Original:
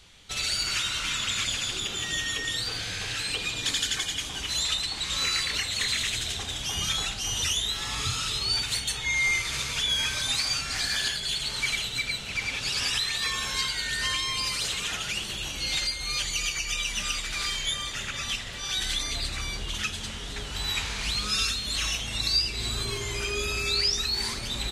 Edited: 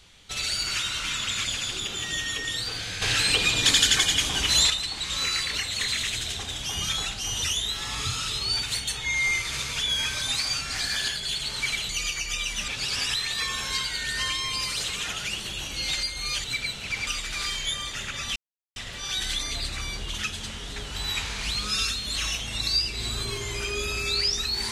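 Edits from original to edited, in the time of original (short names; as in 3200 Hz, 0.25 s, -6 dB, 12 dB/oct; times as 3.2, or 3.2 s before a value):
3.02–4.7 gain +8 dB
11.89–12.52 swap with 16.28–17.07
18.36 insert silence 0.40 s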